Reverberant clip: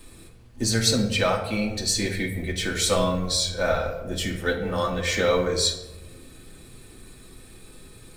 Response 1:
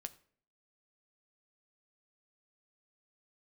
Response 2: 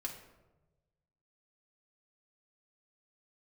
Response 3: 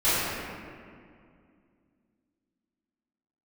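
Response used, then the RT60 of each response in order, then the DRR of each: 2; 0.55, 1.1, 2.2 seconds; 9.0, −1.0, −18.0 decibels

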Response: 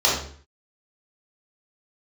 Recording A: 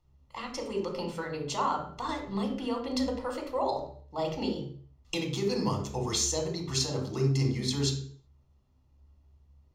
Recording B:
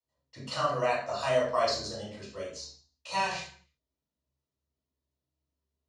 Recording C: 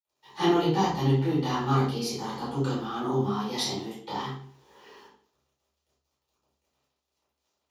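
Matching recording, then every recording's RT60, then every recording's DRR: B; 0.50, 0.50, 0.50 seconds; 2.0, −6.5, −13.5 decibels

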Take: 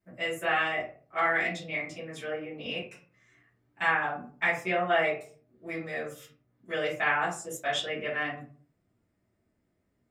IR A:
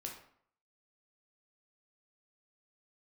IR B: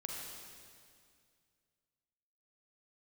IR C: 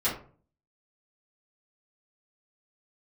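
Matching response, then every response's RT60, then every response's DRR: C; 0.60, 2.2, 0.45 seconds; 0.0, −1.5, −11.5 decibels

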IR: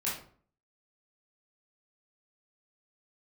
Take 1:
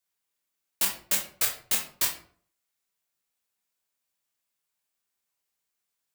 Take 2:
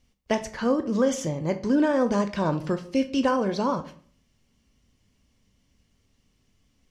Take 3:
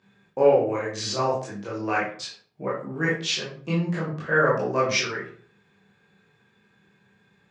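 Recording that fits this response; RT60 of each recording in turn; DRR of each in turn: 3; 0.50, 0.50, 0.50 seconds; 0.0, 8.0, −8.5 decibels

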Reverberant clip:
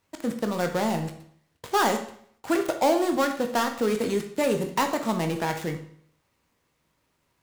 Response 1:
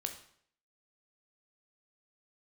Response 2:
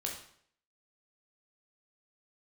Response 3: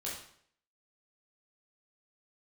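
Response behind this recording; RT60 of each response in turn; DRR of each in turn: 1; 0.60, 0.60, 0.60 seconds; 4.5, −1.0, −6.5 decibels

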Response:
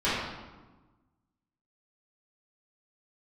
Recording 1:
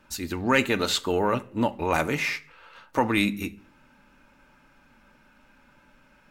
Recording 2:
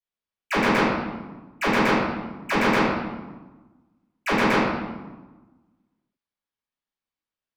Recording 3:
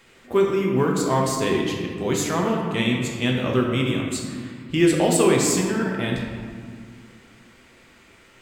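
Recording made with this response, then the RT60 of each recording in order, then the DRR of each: 2; 0.50, 1.2, 2.0 seconds; 8.5, −14.5, −1.0 decibels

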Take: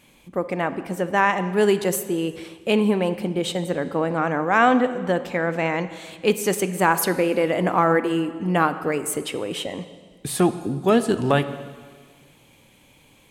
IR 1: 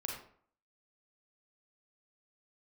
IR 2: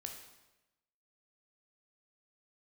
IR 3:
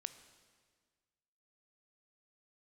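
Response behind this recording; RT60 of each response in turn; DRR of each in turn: 3; 0.55, 1.0, 1.6 seconds; −1.0, 2.5, 11.0 decibels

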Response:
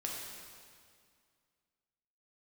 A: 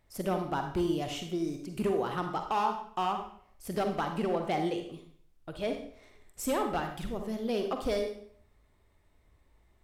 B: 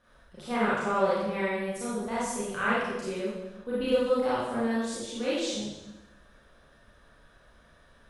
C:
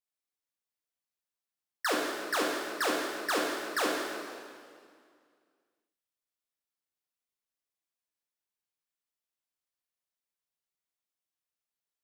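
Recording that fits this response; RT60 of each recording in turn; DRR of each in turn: C; 0.60, 1.0, 2.1 seconds; 4.5, −10.0, −2.5 decibels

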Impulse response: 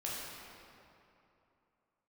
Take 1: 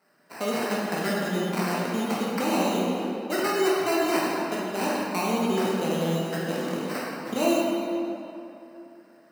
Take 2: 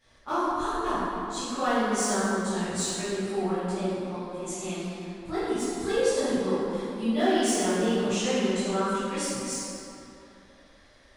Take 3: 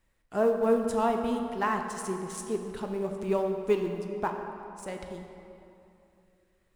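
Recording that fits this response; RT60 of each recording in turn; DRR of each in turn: 1; 2.9, 2.9, 2.9 seconds; −6.0, −16.0, 3.5 decibels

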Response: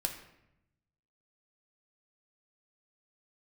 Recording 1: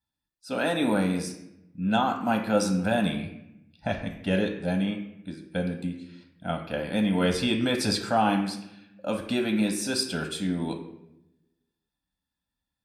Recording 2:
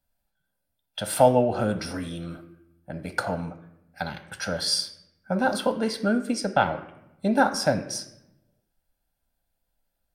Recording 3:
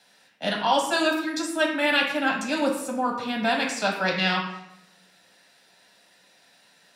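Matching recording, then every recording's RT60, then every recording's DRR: 1; 0.85, 0.85, 0.85 seconds; 3.0, 7.5, −1.5 decibels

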